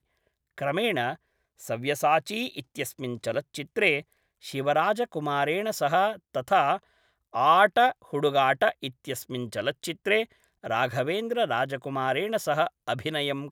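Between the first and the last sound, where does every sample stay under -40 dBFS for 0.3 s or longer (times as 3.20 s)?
1.15–1.62 s
4.01–4.44 s
6.78–7.34 s
10.25–10.64 s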